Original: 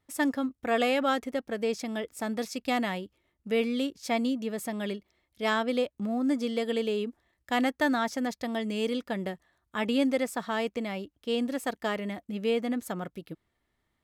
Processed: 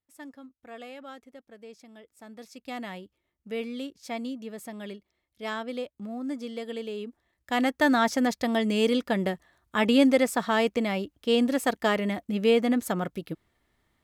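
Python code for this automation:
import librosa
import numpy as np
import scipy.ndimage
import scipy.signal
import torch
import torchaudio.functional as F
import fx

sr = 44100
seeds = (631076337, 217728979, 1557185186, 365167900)

y = fx.gain(x, sr, db=fx.line((2.09, -17.0), (2.95, -6.0), (6.91, -6.0), (8.06, 6.0)))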